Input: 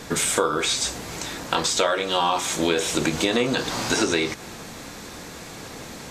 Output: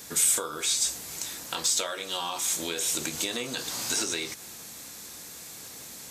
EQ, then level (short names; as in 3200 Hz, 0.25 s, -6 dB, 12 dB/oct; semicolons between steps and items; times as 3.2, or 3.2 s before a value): HPF 47 Hz; pre-emphasis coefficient 0.8; high shelf 9800 Hz +6 dB; 0.0 dB